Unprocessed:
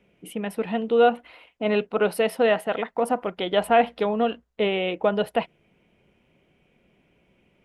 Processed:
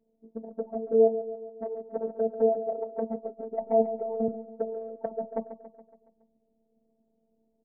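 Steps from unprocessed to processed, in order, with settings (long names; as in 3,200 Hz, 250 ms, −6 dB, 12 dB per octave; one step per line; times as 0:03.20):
Butterworth low-pass 730 Hz 36 dB per octave
0:01.07–0:01.86: downward compressor 12 to 1, threshold −23 dBFS, peak gain reduction 6 dB
notch comb filter 200 Hz
flanger swept by the level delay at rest 8.3 ms, full sweep at −17.5 dBFS
phases set to zero 224 Hz
repeating echo 140 ms, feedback 55%, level −12 dB
0:04.28–0:05.06: multiband upward and downward expander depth 40%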